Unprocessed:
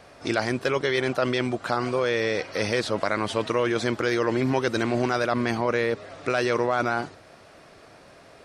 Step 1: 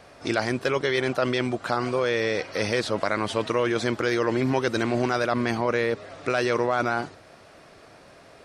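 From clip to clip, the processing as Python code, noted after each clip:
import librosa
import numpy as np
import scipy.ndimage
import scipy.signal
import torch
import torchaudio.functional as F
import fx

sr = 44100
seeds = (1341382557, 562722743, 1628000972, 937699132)

y = x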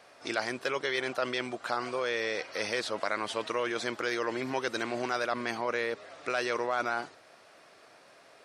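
y = fx.highpass(x, sr, hz=600.0, slope=6)
y = y * 10.0 ** (-4.0 / 20.0)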